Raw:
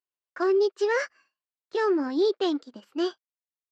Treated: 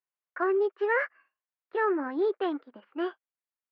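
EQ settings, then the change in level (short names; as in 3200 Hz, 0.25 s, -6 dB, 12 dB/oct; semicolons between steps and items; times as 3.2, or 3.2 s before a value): LPF 2200 Hz 24 dB/oct; low shelf 140 Hz -6 dB; low shelf 470 Hz -10.5 dB; +3.0 dB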